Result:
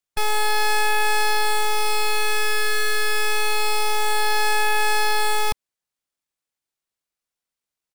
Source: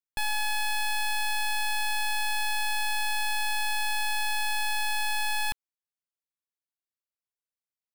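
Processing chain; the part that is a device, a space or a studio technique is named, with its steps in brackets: octave pedal (harmony voices -12 st -1 dB); trim +4.5 dB

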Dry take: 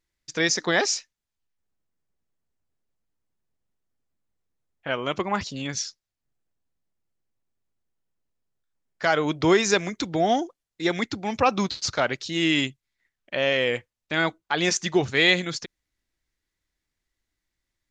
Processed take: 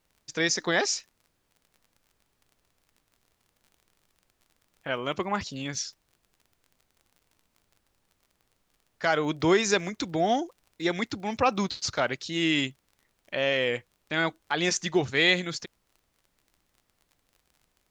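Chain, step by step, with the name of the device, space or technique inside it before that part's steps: vinyl LP (crackle 35 per s -43 dBFS; pink noise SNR 43 dB); trim -3 dB

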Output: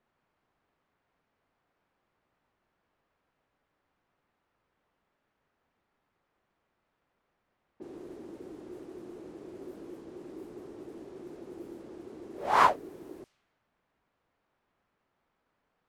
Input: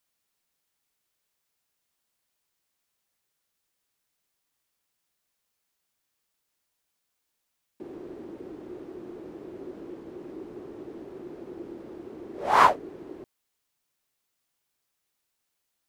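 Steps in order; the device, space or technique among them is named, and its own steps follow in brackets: cassette deck with a dynamic noise filter (white noise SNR 28 dB; level-controlled noise filter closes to 1.2 kHz, open at -35.5 dBFS); trim -4 dB

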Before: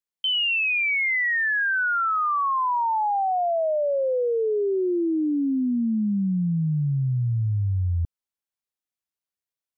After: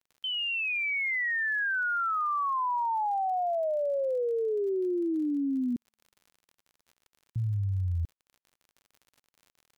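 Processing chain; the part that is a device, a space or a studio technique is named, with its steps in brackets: 5.76–7.36 s: steep high-pass 820 Hz 36 dB/octave; lo-fi chain (low-pass 3 kHz; wow and flutter 20 cents; crackle 57 per s -40 dBFS); trim -5.5 dB

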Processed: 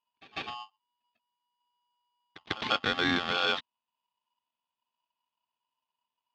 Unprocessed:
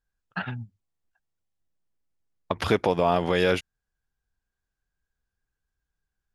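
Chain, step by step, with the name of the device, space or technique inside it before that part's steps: reverse echo 147 ms -18 dB; ring modulator pedal into a guitar cabinet (polarity switched at an audio rate 970 Hz; cabinet simulation 81–4500 Hz, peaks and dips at 240 Hz +7 dB, 570 Hz -7 dB, 3.4 kHz +8 dB); trim -6.5 dB

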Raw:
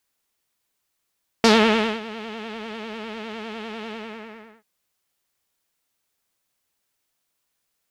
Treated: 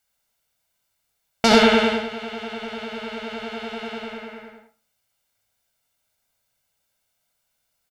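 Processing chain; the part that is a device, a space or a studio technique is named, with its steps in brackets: microphone above a desk (comb 1.4 ms, depth 57%; reverberation RT60 0.40 s, pre-delay 64 ms, DRR 1 dB); trim -1 dB

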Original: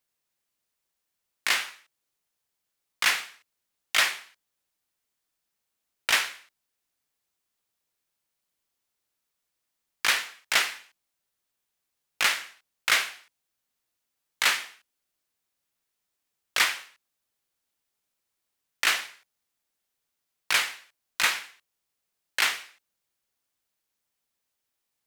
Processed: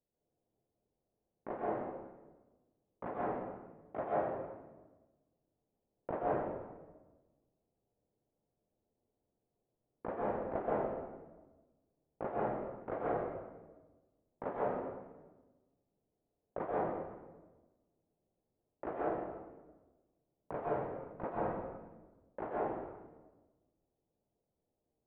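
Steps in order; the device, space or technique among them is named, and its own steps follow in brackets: next room (low-pass 620 Hz 24 dB/octave; reverberation RT60 1.2 s, pre-delay 120 ms, DRR -6.5 dB); trim +4 dB

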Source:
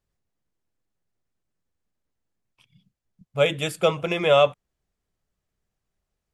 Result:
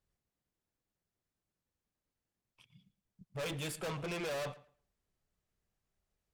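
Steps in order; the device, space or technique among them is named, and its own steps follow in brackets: rockabilly slapback (valve stage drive 33 dB, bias 0.3; tape echo 112 ms, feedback 23%, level -16 dB, low-pass 3.8 kHz); trim -3.5 dB

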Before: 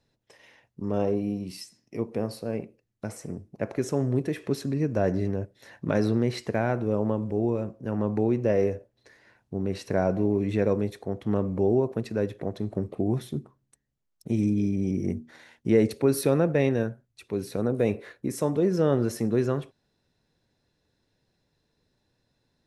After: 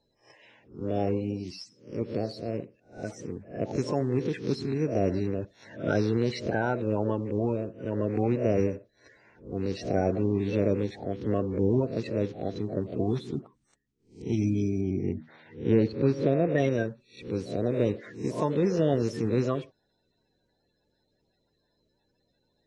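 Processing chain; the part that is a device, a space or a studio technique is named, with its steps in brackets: reverse spectral sustain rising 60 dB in 0.37 s; clip after many re-uploads (low-pass 6.5 kHz 24 dB/octave; coarse spectral quantiser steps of 30 dB); 14.81–16.58 s: distance through air 230 m; trim -1.5 dB

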